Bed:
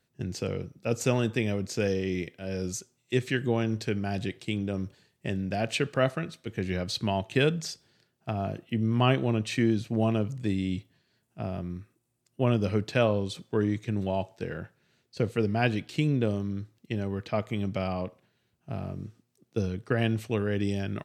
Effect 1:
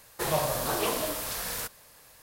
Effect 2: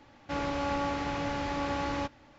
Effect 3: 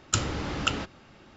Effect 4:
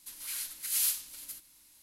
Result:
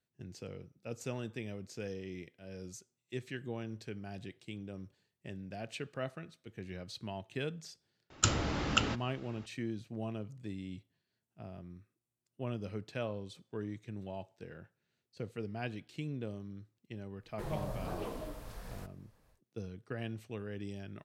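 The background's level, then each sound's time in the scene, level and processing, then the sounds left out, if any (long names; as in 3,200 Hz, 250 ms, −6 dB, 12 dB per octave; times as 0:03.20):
bed −14 dB
0:08.10: mix in 3 −2.5 dB
0:17.19: mix in 1 −14.5 dB, fades 0.10 s + spectral tilt −3.5 dB per octave
not used: 2, 4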